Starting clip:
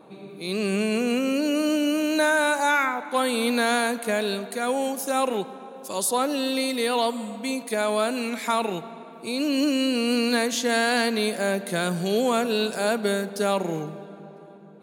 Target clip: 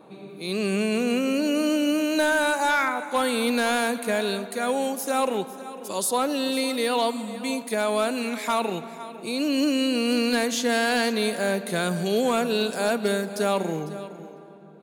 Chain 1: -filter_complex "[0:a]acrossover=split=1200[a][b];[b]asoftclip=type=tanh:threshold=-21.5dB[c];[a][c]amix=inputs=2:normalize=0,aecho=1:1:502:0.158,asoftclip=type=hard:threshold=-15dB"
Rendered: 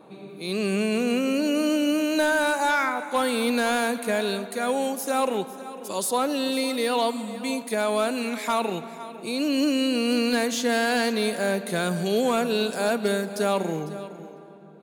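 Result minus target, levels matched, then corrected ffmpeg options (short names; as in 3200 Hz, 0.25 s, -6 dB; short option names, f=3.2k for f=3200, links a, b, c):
soft clip: distortion +9 dB
-filter_complex "[0:a]acrossover=split=1200[a][b];[b]asoftclip=type=tanh:threshold=-15dB[c];[a][c]amix=inputs=2:normalize=0,aecho=1:1:502:0.158,asoftclip=type=hard:threshold=-15dB"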